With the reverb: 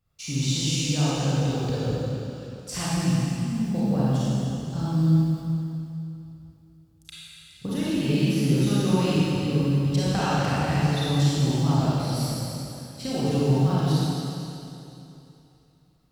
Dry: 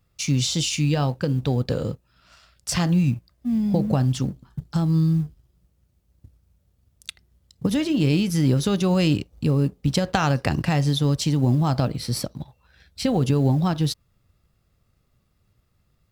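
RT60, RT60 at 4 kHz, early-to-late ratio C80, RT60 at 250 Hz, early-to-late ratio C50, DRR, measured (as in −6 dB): 2.9 s, 2.8 s, −3.5 dB, 3.0 s, −6.5 dB, −9.5 dB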